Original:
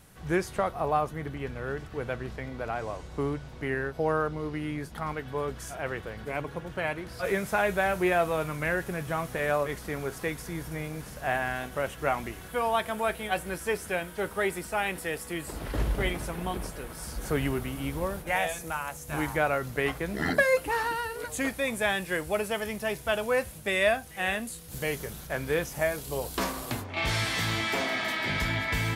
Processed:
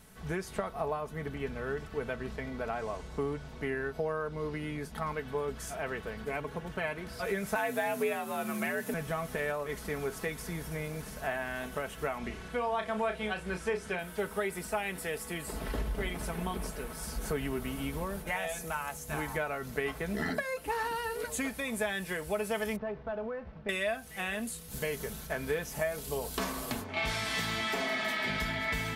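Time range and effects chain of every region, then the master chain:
7.55–8.94 high shelf 7100 Hz +9 dB + frequency shift +65 Hz
12.18–13.99 LPF 6200 Hz + doubler 33 ms -8 dB
22.76–23.69 CVSD 32 kbps + LPF 1200 Hz + compressor, threshold -34 dBFS
whole clip: compressor 6:1, threshold -29 dBFS; comb 4.6 ms, depth 49%; gain -1.5 dB

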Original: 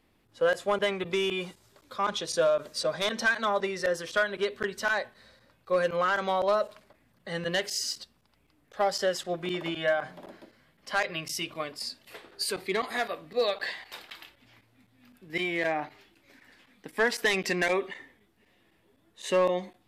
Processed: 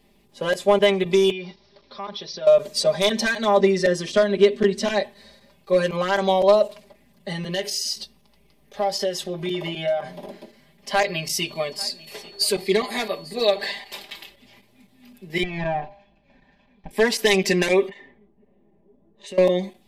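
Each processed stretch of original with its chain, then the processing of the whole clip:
1.31–2.47 rippled Chebyshev low-pass 5700 Hz, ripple 3 dB + compressor 2:1, threshold -44 dBFS
3.57–5.03 LPF 8500 Hz + bell 240 Hz +7.5 dB 1.1 oct + notch 900 Hz, Q 5.7
7.32–10.29 notch 7500 Hz, Q 7.9 + compressor 2:1, threshold -35 dBFS + doubler 19 ms -12 dB
11.01–13.79 whine 4400 Hz -56 dBFS + echo 0.844 s -21.5 dB
15.43–16.91 minimum comb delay 1.2 ms + tape spacing loss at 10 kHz 39 dB + de-hum 200.1 Hz, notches 5
17.89–19.38 low-pass opened by the level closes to 600 Hz, open at -35 dBFS + compressor 3:1, threshold -48 dBFS
whole clip: bell 1400 Hz -12.5 dB 0.63 oct; comb 5 ms, depth 89%; gain +6.5 dB

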